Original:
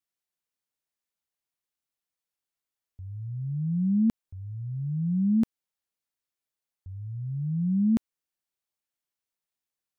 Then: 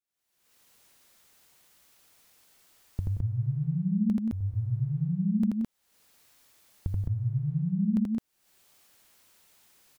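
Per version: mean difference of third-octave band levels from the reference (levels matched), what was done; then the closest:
4.0 dB: camcorder AGC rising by 58 dB per second
on a send: loudspeakers that aren't time-aligned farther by 28 metres −1 dB, 61 metres −10 dB, 73 metres −1 dB
on the sum: level −6.5 dB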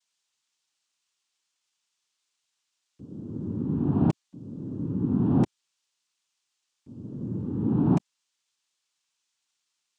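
11.5 dB: parametric band 130 Hz −4.5 dB 2.7 octaves
cochlear-implant simulation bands 4
level +4.5 dB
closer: first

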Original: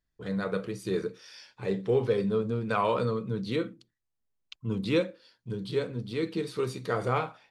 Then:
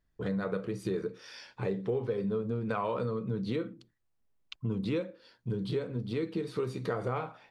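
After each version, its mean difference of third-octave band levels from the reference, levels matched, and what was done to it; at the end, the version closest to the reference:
3.0 dB: high-shelf EQ 2,500 Hz −9.5 dB
downward compressor 4 to 1, threshold −38 dBFS, peak gain reduction 14.5 dB
level +7 dB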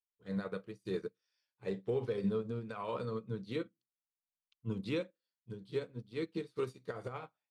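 4.5 dB: brickwall limiter −22 dBFS, peak gain reduction 8.5 dB
expander for the loud parts 2.5 to 1, over −48 dBFS
level −2 dB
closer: first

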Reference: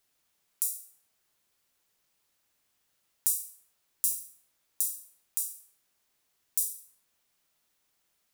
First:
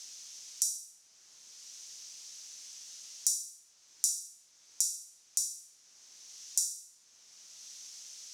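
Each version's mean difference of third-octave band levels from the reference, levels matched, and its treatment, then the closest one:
3.5 dB: low-pass with resonance 6,000 Hz, resonance Q 4.2
high-shelf EQ 4,500 Hz +8 dB
multiband upward and downward compressor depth 70%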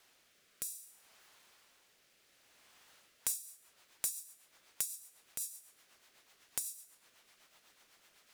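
8.0 dB: mid-hump overdrive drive 11 dB, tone 2,900 Hz, clips at −1 dBFS
downward compressor 2 to 1, threshold −55 dBFS, peak gain reduction 15.5 dB
rotating-speaker cabinet horn 0.6 Hz, later 8 Hz, at 0:02.84
level +12 dB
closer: first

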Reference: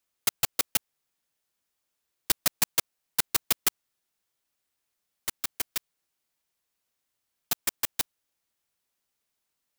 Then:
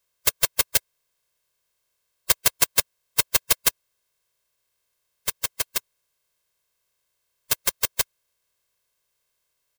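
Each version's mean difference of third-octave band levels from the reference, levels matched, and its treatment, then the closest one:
2.5 dB: spectral magnitudes quantised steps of 30 dB
comb filter 1.9 ms, depth 66%
level +4.5 dB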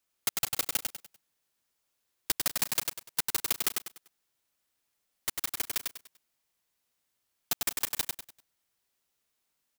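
4.0 dB: downward compressor 3 to 1, threshold −27 dBFS, peak gain reduction 7 dB
on a send: repeating echo 98 ms, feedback 33%, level −4 dB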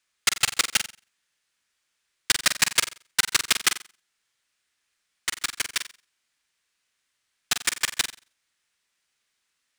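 6.0 dB: drawn EQ curve 790 Hz 0 dB, 1,700 Hz +11 dB, 9,100 Hz +5 dB, 14,000 Hz −9 dB
flutter between parallel walls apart 7.7 metres, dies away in 0.33 s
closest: first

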